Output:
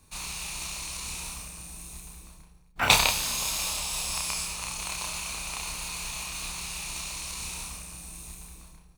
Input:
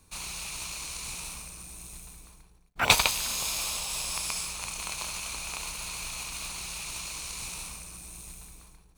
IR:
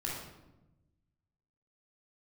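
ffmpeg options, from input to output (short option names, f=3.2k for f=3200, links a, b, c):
-filter_complex "[0:a]asplit=2[a][b];[b]adelay=30,volume=-3.5dB[c];[a][c]amix=inputs=2:normalize=0,asplit=2[d][e];[1:a]atrim=start_sample=2205[f];[e][f]afir=irnorm=-1:irlink=0,volume=-12dB[g];[d][g]amix=inputs=2:normalize=0,volume=-1.5dB"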